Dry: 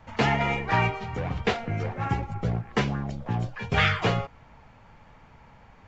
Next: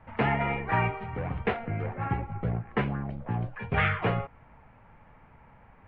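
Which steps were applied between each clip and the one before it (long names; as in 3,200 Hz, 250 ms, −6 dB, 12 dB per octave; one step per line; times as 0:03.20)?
low-pass filter 2,500 Hz 24 dB per octave
level −2.5 dB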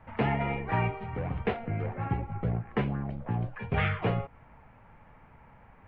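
dynamic equaliser 1,500 Hz, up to −6 dB, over −42 dBFS, Q 0.81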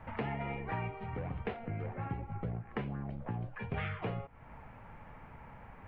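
downward compressor 2.5 to 1, threshold −44 dBFS, peak gain reduction 14.5 dB
level +3.5 dB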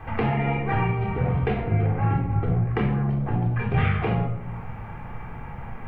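convolution reverb RT60 0.75 s, pre-delay 3 ms, DRR −1 dB
level +8.5 dB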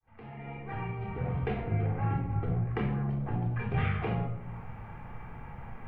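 fade in at the beginning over 1.54 s
level −7.5 dB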